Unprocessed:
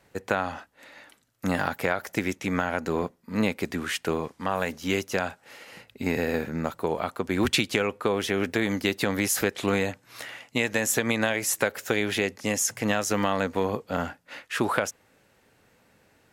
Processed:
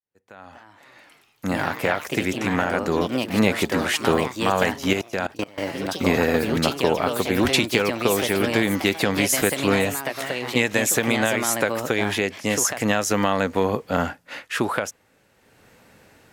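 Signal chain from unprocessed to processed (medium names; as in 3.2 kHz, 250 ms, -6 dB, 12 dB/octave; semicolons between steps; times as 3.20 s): fade-in on the opening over 3.47 s; level rider gain up to 11.5 dB; ever faster or slower copies 293 ms, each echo +3 st, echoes 3, each echo -6 dB; 4.93–5.58 s: level held to a coarse grid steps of 22 dB; trim -2.5 dB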